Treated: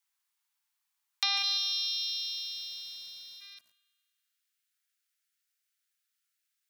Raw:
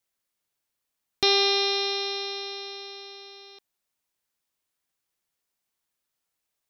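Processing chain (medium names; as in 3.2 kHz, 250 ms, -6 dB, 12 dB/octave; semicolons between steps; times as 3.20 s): steep high-pass 810 Hz 72 dB/octave, from 1.42 s 2.9 kHz, from 3.40 s 1.3 kHz; compression 4:1, threshold -27 dBFS, peak gain reduction 7 dB; spring tank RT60 2 s, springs 50 ms, chirp 65 ms, DRR 19 dB; bit-crushed delay 148 ms, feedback 35%, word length 8-bit, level -10 dB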